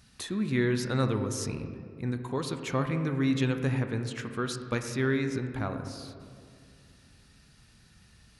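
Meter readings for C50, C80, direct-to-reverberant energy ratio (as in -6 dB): 8.0 dB, 9.0 dB, 6.0 dB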